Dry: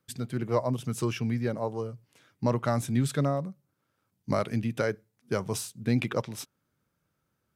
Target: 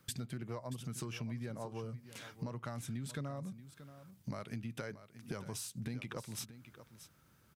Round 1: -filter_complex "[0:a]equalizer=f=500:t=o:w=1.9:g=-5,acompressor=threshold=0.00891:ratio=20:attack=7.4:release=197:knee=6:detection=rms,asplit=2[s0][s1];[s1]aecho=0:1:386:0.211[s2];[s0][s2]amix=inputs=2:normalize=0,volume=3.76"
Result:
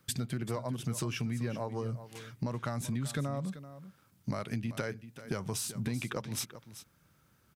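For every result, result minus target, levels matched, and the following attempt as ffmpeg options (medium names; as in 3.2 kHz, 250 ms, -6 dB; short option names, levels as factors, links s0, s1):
echo 244 ms early; compression: peak gain reduction -7 dB
-filter_complex "[0:a]equalizer=f=500:t=o:w=1.9:g=-5,acompressor=threshold=0.00891:ratio=20:attack=7.4:release=197:knee=6:detection=rms,asplit=2[s0][s1];[s1]aecho=0:1:630:0.211[s2];[s0][s2]amix=inputs=2:normalize=0,volume=3.76"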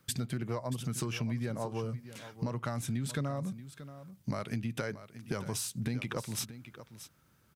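compression: peak gain reduction -7 dB
-filter_complex "[0:a]equalizer=f=500:t=o:w=1.9:g=-5,acompressor=threshold=0.00376:ratio=20:attack=7.4:release=197:knee=6:detection=rms,asplit=2[s0][s1];[s1]aecho=0:1:630:0.211[s2];[s0][s2]amix=inputs=2:normalize=0,volume=3.76"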